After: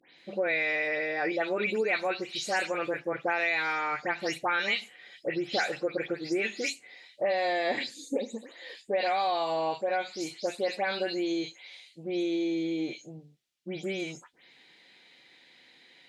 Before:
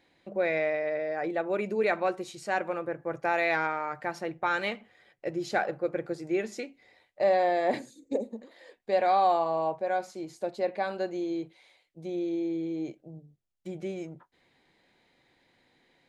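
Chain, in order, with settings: delay that grows with frequency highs late, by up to 181 ms; frequency weighting D; compression 6:1, threshold -28 dBFS, peak gain reduction 10.5 dB; trim +3 dB

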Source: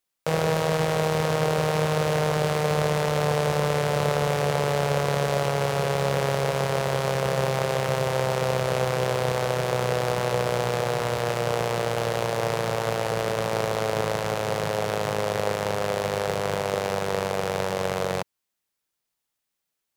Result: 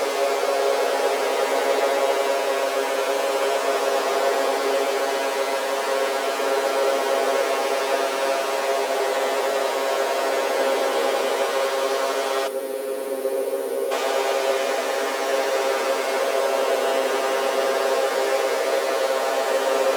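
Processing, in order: Paulstretch 20×, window 0.10 s, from 6.40 s; time-frequency box 12.47–13.91 s, 550–8600 Hz -13 dB; brick-wall FIR high-pass 230 Hz; trim +4 dB

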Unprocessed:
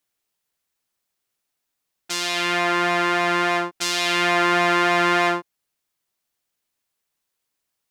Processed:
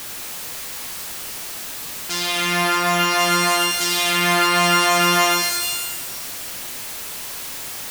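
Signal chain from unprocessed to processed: jump at every zero crossing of -25.5 dBFS; pitch-shifted reverb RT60 1.2 s, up +12 st, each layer -2 dB, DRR 4.5 dB; trim -1 dB

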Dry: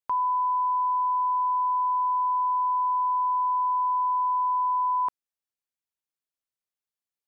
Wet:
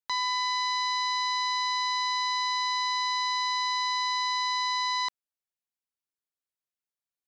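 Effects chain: self-modulated delay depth 0.62 ms; trim -4.5 dB

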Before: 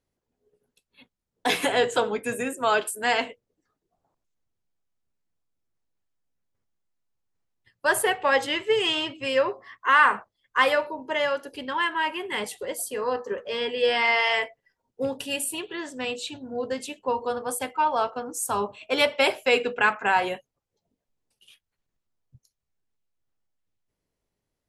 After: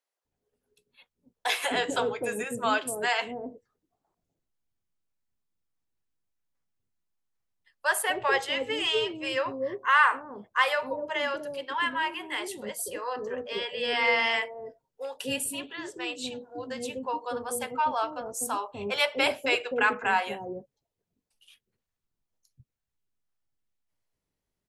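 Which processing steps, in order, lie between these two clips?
bands offset in time highs, lows 250 ms, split 520 Hz; trim -2.5 dB

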